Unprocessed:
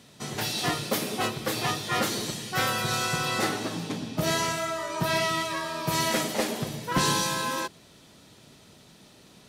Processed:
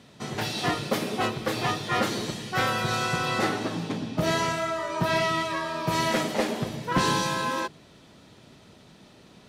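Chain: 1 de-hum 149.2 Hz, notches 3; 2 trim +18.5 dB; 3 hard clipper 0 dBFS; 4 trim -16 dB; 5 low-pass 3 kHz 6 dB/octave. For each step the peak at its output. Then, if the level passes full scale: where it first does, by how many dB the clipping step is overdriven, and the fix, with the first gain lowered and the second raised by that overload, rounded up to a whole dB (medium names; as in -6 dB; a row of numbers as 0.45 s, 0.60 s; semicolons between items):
-15.0 dBFS, +3.5 dBFS, 0.0 dBFS, -16.0 dBFS, -16.0 dBFS; step 2, 3.5 dB; step 2 +14.5 dB, step 4 -12 dB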